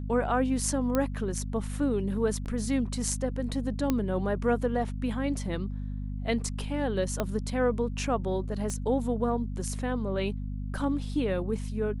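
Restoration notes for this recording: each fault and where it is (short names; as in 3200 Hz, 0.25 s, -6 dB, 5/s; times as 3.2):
hum 50 Hz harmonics 5 -34 dBFS
0.95 pop -13 dBFS
2.45–2.46 gap 8.7 ms
3.9 pop -13 dBFS
7.2 pop -14 dBFS
8.7 pop -22 dBFS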